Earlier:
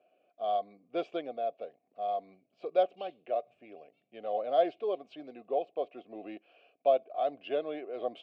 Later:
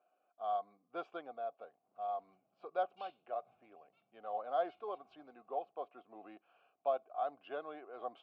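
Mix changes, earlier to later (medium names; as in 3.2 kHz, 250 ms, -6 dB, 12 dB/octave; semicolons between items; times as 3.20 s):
speech -12.0 dB; master: add high-order bell 1.1 kHz +14.5 dB 1.2 oct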